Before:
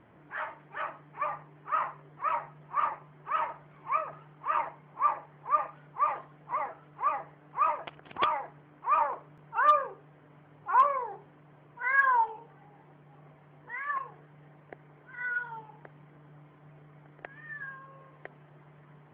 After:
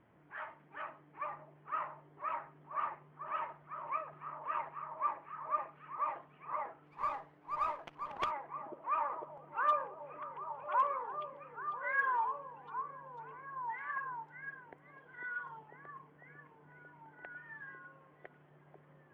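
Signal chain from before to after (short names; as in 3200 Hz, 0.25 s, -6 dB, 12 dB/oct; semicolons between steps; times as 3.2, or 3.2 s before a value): delay with a stepping band-pass 0.498 s, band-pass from 290 Hz, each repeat 0.7 oct, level 0 dB; 6.86–8.31 running maximum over 3 samples; gain -8.5 dB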